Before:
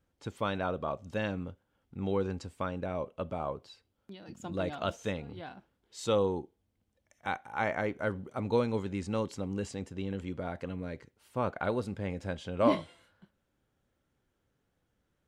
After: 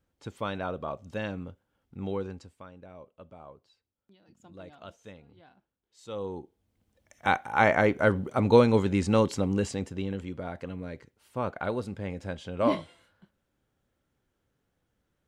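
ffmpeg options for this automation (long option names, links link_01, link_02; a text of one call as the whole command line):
ffmpeg -i in.wav -af "volume=22dB,afade=type=out:start_time=2.05:duration=0.58:silence=0.237137,afade=type=in:start_time=6.07:duration=0.32:silence=0.316228,afade=type=in:start_time=6.39:duration=0.93:silence=0.237137,afade=type=out:start_time=9.3:duration=0.99:silence=0.354813" out.wav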